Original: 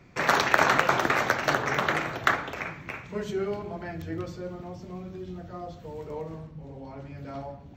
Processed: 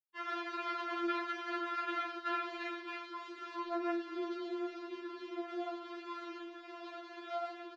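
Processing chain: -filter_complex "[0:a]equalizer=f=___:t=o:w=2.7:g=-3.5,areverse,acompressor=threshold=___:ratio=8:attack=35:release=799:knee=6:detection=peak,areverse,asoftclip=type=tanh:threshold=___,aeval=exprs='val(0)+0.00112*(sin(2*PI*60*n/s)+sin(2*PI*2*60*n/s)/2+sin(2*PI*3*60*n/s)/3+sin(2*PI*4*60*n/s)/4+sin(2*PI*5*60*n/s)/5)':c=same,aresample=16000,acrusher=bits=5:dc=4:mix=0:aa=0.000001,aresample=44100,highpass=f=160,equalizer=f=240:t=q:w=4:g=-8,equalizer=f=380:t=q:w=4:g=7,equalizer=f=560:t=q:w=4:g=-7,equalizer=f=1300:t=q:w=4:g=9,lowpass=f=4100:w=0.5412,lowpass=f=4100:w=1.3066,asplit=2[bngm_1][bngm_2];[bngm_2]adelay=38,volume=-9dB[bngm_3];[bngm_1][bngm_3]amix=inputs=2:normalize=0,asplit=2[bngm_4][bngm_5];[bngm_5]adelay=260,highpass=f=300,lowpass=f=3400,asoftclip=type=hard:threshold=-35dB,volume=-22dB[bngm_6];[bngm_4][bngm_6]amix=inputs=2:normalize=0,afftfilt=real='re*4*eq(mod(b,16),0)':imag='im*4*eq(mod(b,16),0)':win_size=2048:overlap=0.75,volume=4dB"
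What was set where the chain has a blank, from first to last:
2900, -34dB, -27dB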